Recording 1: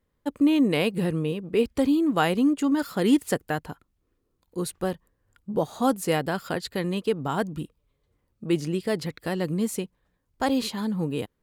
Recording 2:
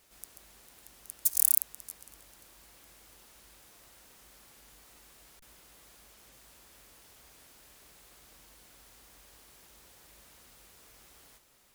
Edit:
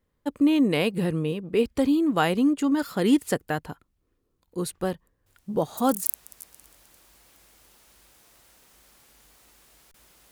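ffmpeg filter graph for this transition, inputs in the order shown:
-filter_complex "[1:a]asplit=2[s0][s1];[0:a]apad=whole_dur=10.31,atrim=end=10.31,atrim=end=6.062[s2];[s1]atrim=start=1.538:end=5.79[s3];[s0]atrim=start=0.74:end=1.54,asetpts=PTS-STARTPTS,volume=0.237,afade=t=in:d=0.004:c=hsin,afade=t=out:st=0.796:d=0.004:c=hsin,adelay=5260[s4];[s2][s3]acrossfade=d=0.004:c1=hsin:c2=hsin[s5];[s5][s4]amix=inputs=2:normalize=0"

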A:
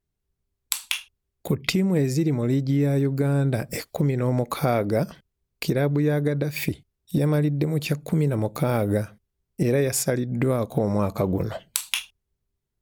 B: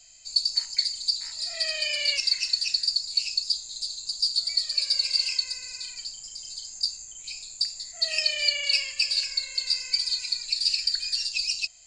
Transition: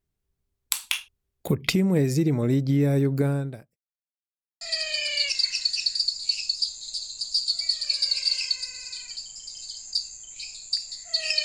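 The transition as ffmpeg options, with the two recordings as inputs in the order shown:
-filter_complex "[0:a]apad=whole_dur=11.44,atrim=end=11.44,asplit=2[s0][s1];[s0]atrim=end=3.77,asetpts=PTS-STARTPTS,afade=t=out:st=3.24:d=0.53:c=qua[s2];[s1]atrim=start=3.77:end=4.61,asetpts=PTS-STARTPTS,volume=0[s3];[1:a]atrim=start=1.49:end=8.32,asetpts=PTS-STARTPTS,afade=t=in:d=0.004:c=hsin[s4];[s2][s3][s4]concat=n=3:v=0:a=1"

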